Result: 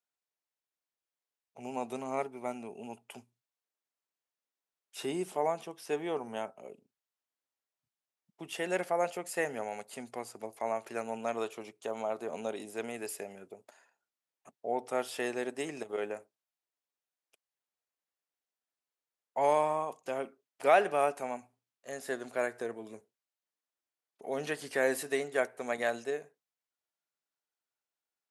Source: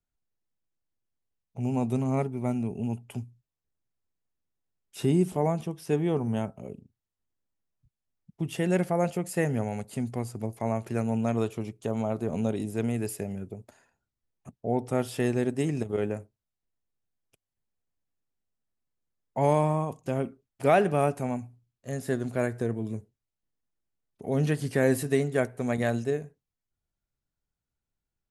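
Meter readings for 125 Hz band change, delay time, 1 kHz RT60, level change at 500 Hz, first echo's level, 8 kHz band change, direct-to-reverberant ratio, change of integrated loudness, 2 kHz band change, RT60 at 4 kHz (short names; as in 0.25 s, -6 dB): -23.5 dB, none, none, -4.0 dB, none, -2.5 dB, none, -5.5 dB, 0.0 dB, none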